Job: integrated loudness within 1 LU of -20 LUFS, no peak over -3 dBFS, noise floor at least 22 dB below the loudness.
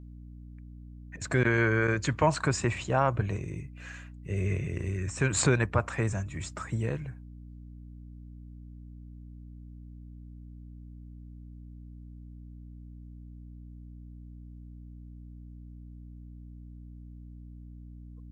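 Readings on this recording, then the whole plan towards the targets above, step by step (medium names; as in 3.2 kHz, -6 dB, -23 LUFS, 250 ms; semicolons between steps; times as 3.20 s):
hum 60 Hz; highest harmonic 300 Hz; hum level -44 dBFS; loudness -29.0 LUFS; peak level -10.0 dBFS; loudness target -20.0 LUFS
-> de-hum 60 Hz, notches 5; trim +9 dB; peak limiter -3 dBFS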